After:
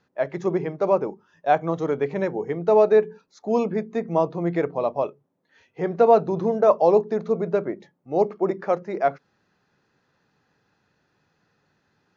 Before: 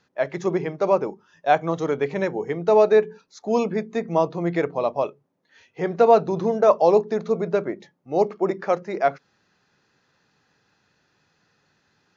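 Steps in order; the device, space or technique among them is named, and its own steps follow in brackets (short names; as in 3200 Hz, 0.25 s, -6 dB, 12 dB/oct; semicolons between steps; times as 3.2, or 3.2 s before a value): behind a face mask (high shelf 2000 Hz -8 dB)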